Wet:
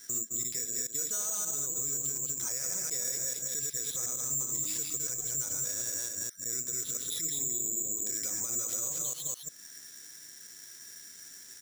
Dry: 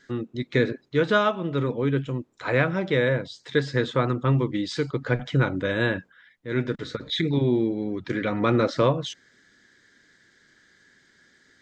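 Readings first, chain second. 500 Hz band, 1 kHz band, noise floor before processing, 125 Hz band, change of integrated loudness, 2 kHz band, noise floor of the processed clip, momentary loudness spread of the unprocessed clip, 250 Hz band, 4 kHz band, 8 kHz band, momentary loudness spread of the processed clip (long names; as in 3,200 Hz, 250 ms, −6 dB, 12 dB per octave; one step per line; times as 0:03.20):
−24.0 dB, −23.0 dB, −62 dBFS, −24.5 dB, −5.5 dB, −21.5 dB, −50 dBFS, 9 LU, −24.0 dB, −7.5 dB, can't be measured, 16 LU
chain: delay that plays each chunk backwards 145 ms, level −1.5 dB
single-tap delay 209 ms −10 dB
dynamic equaliser 190 Hz, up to −5 dB, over −31 dBFS, Q 0.76
downward compressor 2 to 1, threshold −46 dBFS, peak gain reduction 17 dB
bad sample-rate conversion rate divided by 6×, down none, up zero stuff
parametric band 6,400 Hz +13.5 dB 1 octave
brickwall limiter −14 dBFS, peak gain reduction 11 dB
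level −6 dB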